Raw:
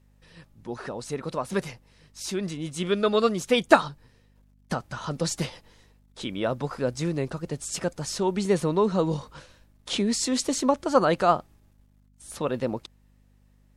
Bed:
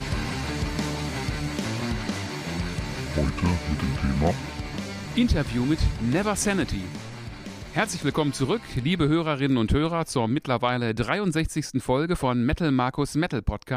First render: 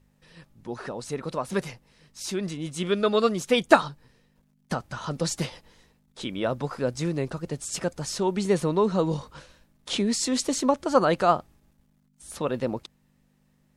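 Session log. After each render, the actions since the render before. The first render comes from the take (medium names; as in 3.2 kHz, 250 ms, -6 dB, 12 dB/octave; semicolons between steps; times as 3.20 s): de-hum 50 Hz, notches 2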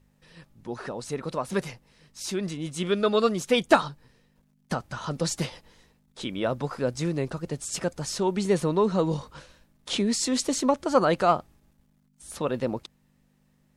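saturation -6.5 dBFS, distortion -21 dB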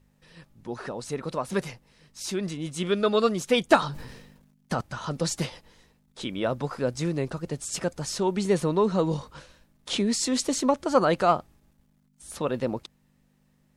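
3.79–4.81 s: decay stretcher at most 49 dB/s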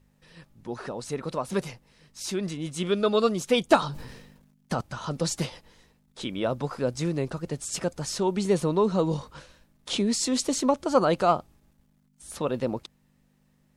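dynamic bell 1.8 kHz, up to -5 dB, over -43 dBFS, Q 2.2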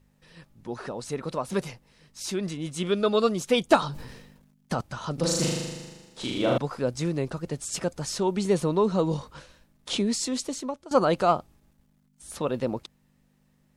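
5.14–6.58 s: flutter echo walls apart 6.8 m, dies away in 1.3 s; 9.99–10.91 s: fade out, to -18 dB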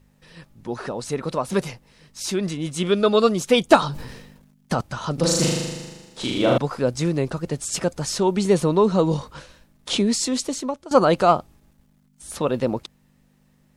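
trim +5.5 dB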